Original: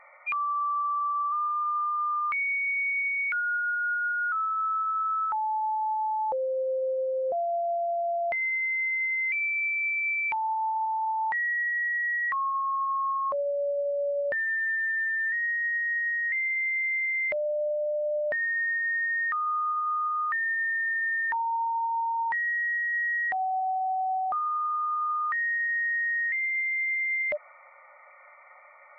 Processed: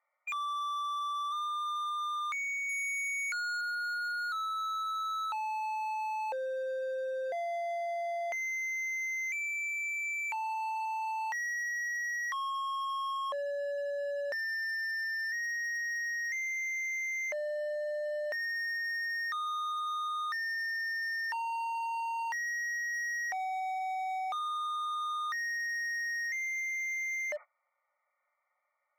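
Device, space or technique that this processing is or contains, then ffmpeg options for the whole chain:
walkie-talkie: -filter_complex "[0:a]asettb=1/sr,asplit=3[link_01][link_02][link_03];[link_01]atrim=end=2.694[link_04];[link_02]atrim=start=2.69:end=3.61,asetpts=PTS-STARTPTS,afade=type=in:duration=0.004:curve=qsin,afade=type=out:start_time=0.916:duration=0.004:curve=qsin,highshelf=frequency=2500:gain=11.5[link_05];[link_03]atrim=start=3.606[link_06];[link_04][link_05]acrossfade=duration=0.004:curve1=hsin:curve2=qsin[link_07];[link_07][link_06]acrossfade=duration=0.004:curve1=qsin:curve2=hsin,highpass=440,lowpass=2400,asoftclip=type=hard:threshold=-31dB,agate=range=-25dB:threshold=-42dB:ratio=16:detection=peak,volume=-2.5dB"

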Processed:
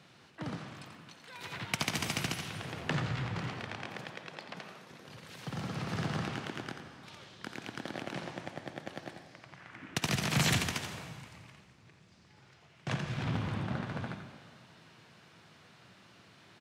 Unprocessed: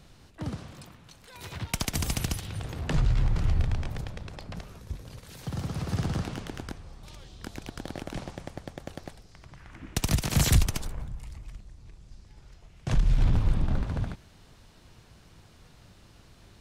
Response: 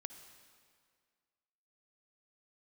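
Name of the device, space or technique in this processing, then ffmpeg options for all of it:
PA in a hall: -filter_complex "[0:a]asettb=1/sr,asplit=3[link_01][link_02][link_03];[link_01]atrim=end=3.474[link_04];[link_02]atrim=start=3.47:end=5.08,asetpts=PTS-STARTPTS,afade=type=in:duration=0.004:curve=qsin,afade=type=out:start_time=1.606:duration=0.004:curve=qsin,highpass=220[link_05];[link_03]atrim=start=5.076[link_06];[link_04][link_05]acrossfade=duration=0.004:curve1=hsin:curve2=qsin[link_07];[link_07][link_06]acrossfade=duration=0.004:curve1=qsin:curve2=hsin,highpass=frequency=120:width=0.5412,highpass=frequency=120:width=1.3066,equalizer=frequency=2000:width_type=o:width=2.4:gain=7,aecho=1:1:87:0.376[link_08];[1:a]atrim=start_sample=2205[link_09];[link_08][link_09]afir=irnorm=-1:irlink=0,highshelf=frequency=8000:gain=-8"

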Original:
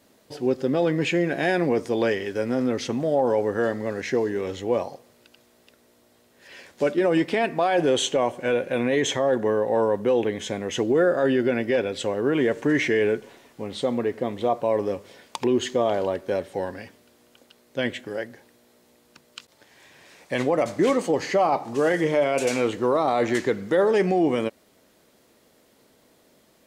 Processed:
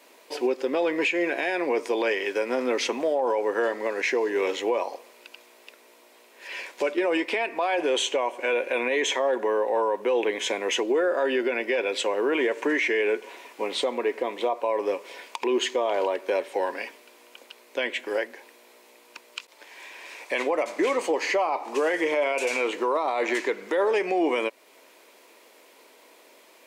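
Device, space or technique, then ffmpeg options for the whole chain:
laptop speaker: -af "highpass=frequency=330:width=0.5412,highpass=frequency=330:width=1.3066,equalizer=frequency=980:width_type=o:width=0.2:gain=9,equalizer=frequency=2400:width_type=o:width=0.48:gain=9,alimiter=limit=-21dB:level=0:latency=1:release=288,volume=5dB"

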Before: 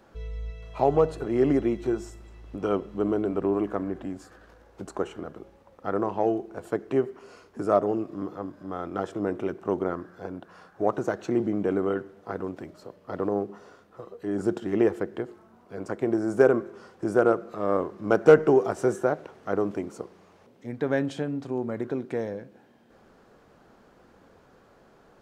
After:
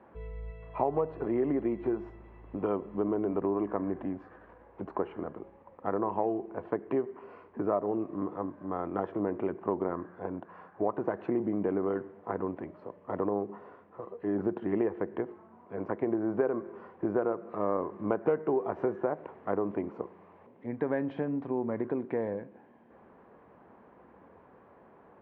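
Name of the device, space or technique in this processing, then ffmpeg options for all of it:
bass amplifier: -af "acompressor=threshold=-26dB:ratio=4,highpass=74,equalizer=frequency=130:width_type=q:width=4:gain=-5,equalizer=frequency=990:width_type=q:width=4:gain=6,equalizer=frequency=1400:width_type=q:width=4:gain=-6,lowpass=frequency=2200:width=0.5412,lowpass=frequency=2200:width=1.3066"

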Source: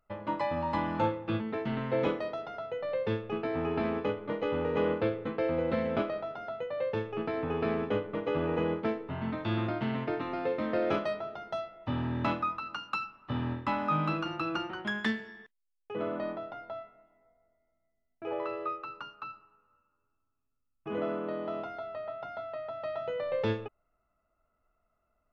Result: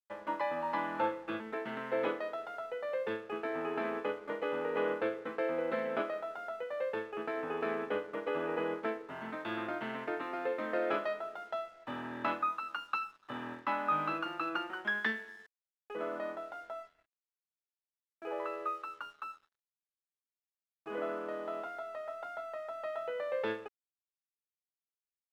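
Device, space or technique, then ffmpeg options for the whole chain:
pocket radio on a weak battery: -af "highpass=340,lowpass=3600,aeval=exprs='sgn(val(0))*max(abs(val(0))-0.001,0)':channel_layout=same,equalizer=frequency=1600:width_type=o:width=0.54:gain=5.5,volume=-2.5dB"

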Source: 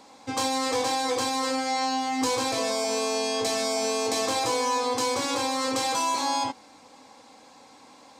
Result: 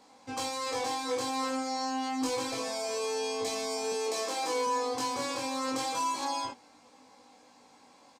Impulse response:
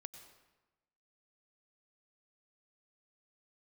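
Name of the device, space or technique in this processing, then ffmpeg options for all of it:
double-tracked vocal: -filter_complex "[0:a]asettb=1/sr,asplit=3[link_01][link_02][link_03];[link_01]atrim=end=3.924[link_04];[link_02]atrim=start=3.92:end=4.67,asetpts=PTS-STARTPTS,afade=type=in:duration=0.004:curve=qsin,afade=type=out:start_time=0.746:duration=0.004:curve=qsin,highpass=frequency=210:width=0.5412,highpass=frequency=210:width=1.3066[link_05];[link_03]atrim=start=4.666[link_06];[link_04][link_05]acrossfade=duration=0.004:curve1=hsin:curve2=qsin[link_07];[link_07][link_06]acrossfade=duration=0.004:curve1=qsin:curve2=hsin,asplit=2[link_08][link_09];[link_09]adelay=16,volume=-12dB[link_10];[link_08][link_10]amix=inputs=2:normalize=0,flanger=delay=20:depth=3.1:speed=0.28,equalizer=frequency=3700:width=8:gain=-3,volume=-4dB"

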